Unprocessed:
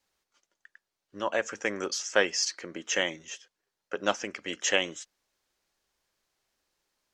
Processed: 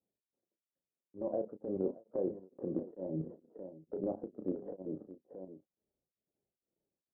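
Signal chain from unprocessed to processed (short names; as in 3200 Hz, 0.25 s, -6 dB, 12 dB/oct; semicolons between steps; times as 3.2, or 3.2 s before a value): moving spectral ripple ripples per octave 1.9, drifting -2.1 Hz, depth 6 dB; inverse Chebyshev low-pass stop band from 2200 Hz, stop band 60 dB; gate with hold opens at -54 dBFS; HPF 170 Hz 12 dB/oct; tilt -4.5 dB/oct; level quantiser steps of 15 dB; limiter -31.5 dBFS, peak gain reduction 11.5 dB; compressor 2:1, threshold -53 dBFS, peak gain reduction 9.5 dB; doubler 32 ms -7.5 dB; echo 0.626 s -12.5 dB; beating tremolo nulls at 2.2 Hz; gain +15 dB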